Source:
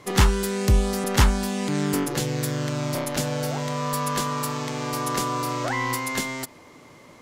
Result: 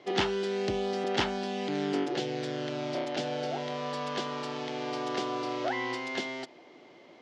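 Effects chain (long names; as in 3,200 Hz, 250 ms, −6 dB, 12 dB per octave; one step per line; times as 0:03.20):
loudspeaker in its box 230–5,100 Hz, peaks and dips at 360 Hz +8 dB, 710 Hz +8 dB, 1,100 Hz −7 dB, 3,100 Hz +5 dB
level −6.5 dB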